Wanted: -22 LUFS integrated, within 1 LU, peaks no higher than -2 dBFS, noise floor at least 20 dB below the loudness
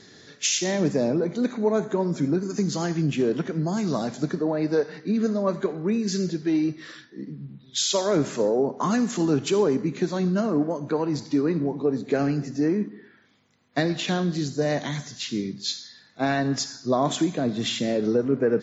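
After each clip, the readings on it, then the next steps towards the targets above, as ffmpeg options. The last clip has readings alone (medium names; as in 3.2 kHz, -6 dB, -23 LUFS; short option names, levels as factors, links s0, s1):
loudness -25.0 LUFS; peak level -11.0 dBFS; loudness target -22.0 LUFS
-> -af "volume=1.41"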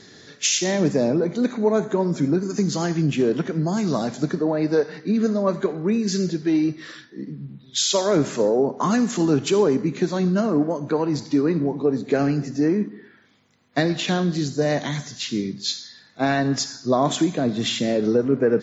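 loudness -22.0 LUFS; peak level -8.0 dBFS; noise floor -51 dBFS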